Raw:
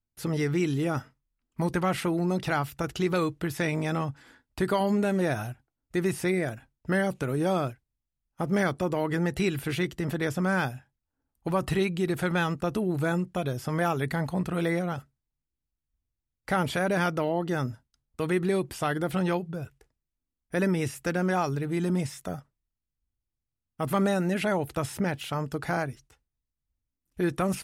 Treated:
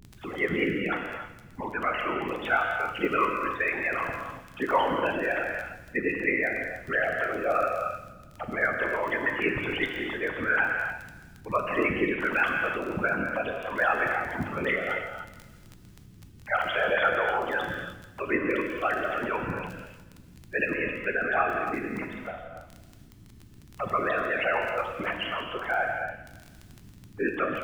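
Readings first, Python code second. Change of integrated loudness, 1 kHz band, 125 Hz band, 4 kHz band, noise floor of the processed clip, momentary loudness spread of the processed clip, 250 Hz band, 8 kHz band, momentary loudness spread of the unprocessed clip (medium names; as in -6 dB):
+0.5 dB, +3.5 dB, -12.0 dB, +0.5 dB, -51 dBFS, 13 LU, -6.0 dB, under -10 dB, 9 LU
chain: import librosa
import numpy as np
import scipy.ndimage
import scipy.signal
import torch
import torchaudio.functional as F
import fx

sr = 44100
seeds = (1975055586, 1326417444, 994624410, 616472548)

p1 = fx.sine_speech(x, sr)
p2 = fx.peak_eq(p1, sr, hz=330.0, db=-13.0, octaves=1.8)
p3 = fx.add_hum(p2, sr, base_hz=60, snr_db=20)
p4 = fx.whisperise(p3, sr, seeds[0])
p5 = fx.dmg_crackle(p4, sr, seeds[1], per_s=19.0, level_db=-37.0)
p6 = p5 + fx.echo_feedback(p5, sr, ms=167, feedback_pct=44, wet_db=-16.0, dry=0)
p7 = fx.rev_gated(p6, sr, seeds[2], gate_ms=330, shape='flat', drr_db=2.0)
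y = p7 * 10.0 ** (5.0 / 20.0)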